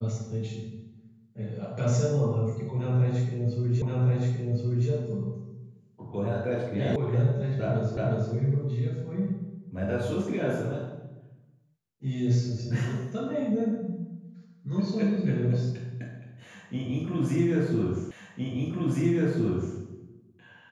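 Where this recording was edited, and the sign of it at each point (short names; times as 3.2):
3.82 repeat of the last 1.07 s
6.96 sound cut off
7.97 repeat of the last 0.36 s
18.11 repeat of the last 1.66 s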